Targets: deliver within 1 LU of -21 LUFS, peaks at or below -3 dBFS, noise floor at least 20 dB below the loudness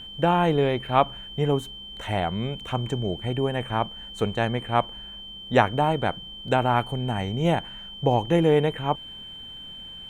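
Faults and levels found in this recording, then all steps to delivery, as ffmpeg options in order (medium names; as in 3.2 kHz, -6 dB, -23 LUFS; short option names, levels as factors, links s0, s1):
steady tone 3.1 kHz; tone level -38 dBFS; loudness -25.0 LUFS; peak level -2.0 dBFS; loudness target -21.0 LUFS
-> -af "bandreject=f=3100:w=30"
-af "volume=1.58,alimiter=limit=0.708:level=0:latency=1"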